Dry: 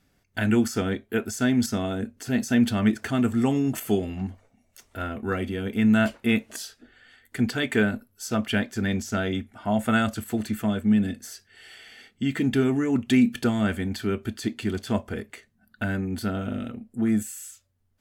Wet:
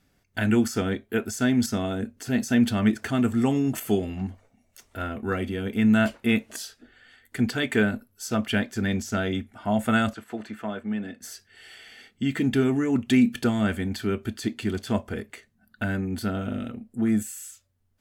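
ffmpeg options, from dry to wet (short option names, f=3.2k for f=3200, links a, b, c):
-filter_complex "[0:a]asettb=1/sr,asplit=3[a][b][c];[a]atrim=end=10.134[d];[b]atrim=start=10.13:end=11.21,asetpts=PTS-STARTPTS,afade=t=in:d=0.004:c=qsin,afade=t=out:st=1.076:d=0.004:c=qsin,bandpass=f=1k:t=q:w=0.6[e];[c]atrim=start=11.206[f];[d][e]acrossfade=d=0.004:c1=hsin:c2=qsin[g];[g][f]acrossfade=d=0.004:c1=qsin:c2=hsin"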